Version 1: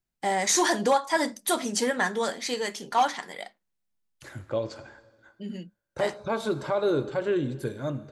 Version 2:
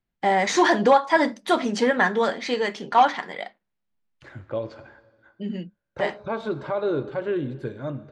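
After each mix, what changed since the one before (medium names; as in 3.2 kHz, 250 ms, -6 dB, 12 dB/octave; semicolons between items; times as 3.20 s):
first voice +6.0 dB; master: add low-pass 3.1 kHz 12 dB/octave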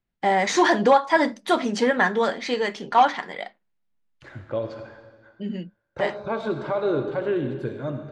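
second voice: send +9.5 dB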